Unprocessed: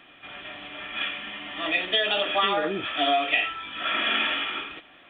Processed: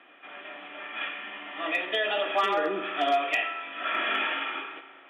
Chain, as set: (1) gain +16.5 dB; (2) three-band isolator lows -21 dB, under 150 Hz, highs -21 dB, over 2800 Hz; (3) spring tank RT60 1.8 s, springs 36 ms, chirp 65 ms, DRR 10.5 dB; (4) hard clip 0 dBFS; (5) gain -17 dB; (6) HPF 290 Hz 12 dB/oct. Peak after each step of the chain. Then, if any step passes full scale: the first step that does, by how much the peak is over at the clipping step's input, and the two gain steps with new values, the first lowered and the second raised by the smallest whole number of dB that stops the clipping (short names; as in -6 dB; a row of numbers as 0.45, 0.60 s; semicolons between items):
+9.0, +5.0, +5.5, 0.0, -17.0, -14.0 dBFS; step 1, 5.5 dB; step 1 +10.5 dB, step 5 -11 dB